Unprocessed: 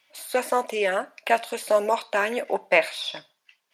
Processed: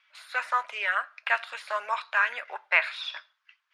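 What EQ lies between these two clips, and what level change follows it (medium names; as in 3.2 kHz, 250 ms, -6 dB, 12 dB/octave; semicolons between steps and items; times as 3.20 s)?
ladder band-pass 1.5 kHz, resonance 55%; treble shelf 2.2 kHz +9.5 dB; +7.0 dB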